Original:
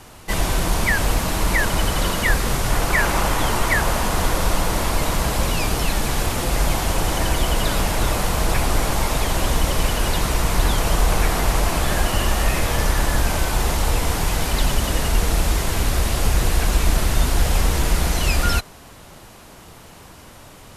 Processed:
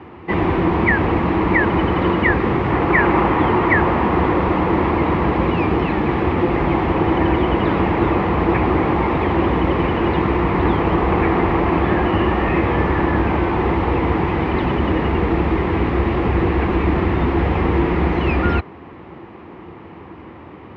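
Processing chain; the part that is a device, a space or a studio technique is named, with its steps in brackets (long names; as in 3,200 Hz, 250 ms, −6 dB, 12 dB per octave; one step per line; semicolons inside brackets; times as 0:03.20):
bass cabinet (loudspeaker in its box 74–2,100 Hz, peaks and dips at 120 Hz −7 dB, 340 Hz +9 dB, 620 Hz −8 dB, 1,500 Hz −9 dB)
level +7.5 dB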